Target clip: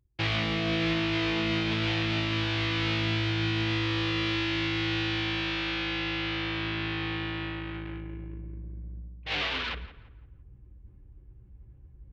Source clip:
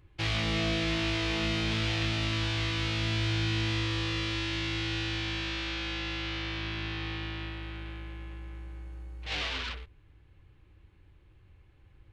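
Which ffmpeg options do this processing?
-filter_complex "[0:a]highpass=91,anlmdn=0.158,lowpass=4k,areverse,acompressor=mode=upward:threshold=-36dB:ratio=2.5,areverse,alimiter=limit=-22dB:level=0:latency=1:release=170,asplit=2[a][b];[b]adelay=170,lowpass=f=2.5k:p=1,volume=-15dB,asplit=2[c][d];[d]adelay=170,lowpass=f=2.5k:p=1,volume=0.39,asplit=2[e][f];[f]adelay=170,lowpass=f=2.5k:p=1,volume=0.39,asplit=2[g][h];[h]adelay=170,lowpass=f=2.5k:p=1,volume=0.39[i];[c][e][g][i]amix=inputs=4:normalize=0[j];[a][j]amix=inputs=2:normalize=0,volume=4.5dB"

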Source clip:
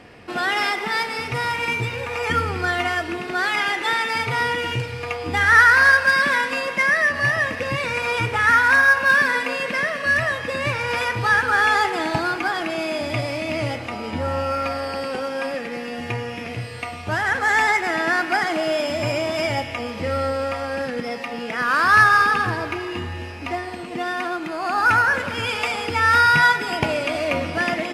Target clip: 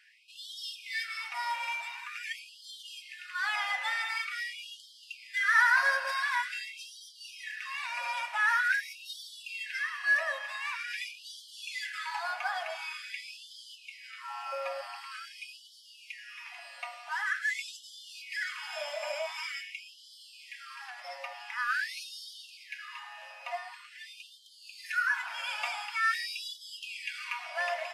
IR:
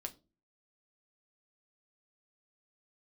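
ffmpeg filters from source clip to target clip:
-filter_complex "[0:a]asettb=1/sr,asplit=3[a][b][c];[a]atrim=end=15.114[d];[b]atrim=start=15.11:end=15.81,asetpts=PTS-STARTPTS,afade=t=in:d=0.004:c=qsin,afade=t=out:st=0.696:d=0.004:c=qsin,aecho=1:1:2.4:0.82,atrim=end_sample=30870[e];[c]atrim=start=15.806[f];[d][e]acrossfade=d=0.004:c1=hsin:c2=qsin[g];[g][f]acrossfade=d=0.004:c1=qsin:c2=hsin[h];[1:a]atrim=start_sample=2205,asetrate=70560,aresample=44100[i];[h][i]afir=irnorm=-1:irlink=0,afftfilt=real='re*gte(b*sr/1024,520*pow(3000/520,0.5+0.5*sin(2*PI*0.46*pts/sr)))':imag='im*gte(b*sr/1024,520*pow(3000/520,0.5+0.5*sin(2*PI*0.46*pts/sr)))':win_size=1024:overlap=0.75,volume=-3dB"

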